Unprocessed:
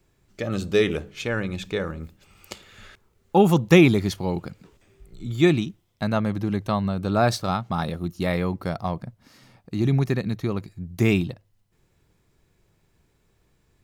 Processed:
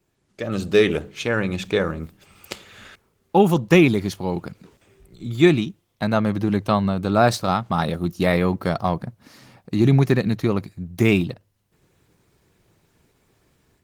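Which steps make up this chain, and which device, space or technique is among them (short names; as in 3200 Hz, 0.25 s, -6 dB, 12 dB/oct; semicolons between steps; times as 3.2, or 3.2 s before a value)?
video call (HPF 110 Hz 6 dB/oct; AGC gain up to 9 dB; gain -1.5 dB; Opus 20 kbps 48000 Hz)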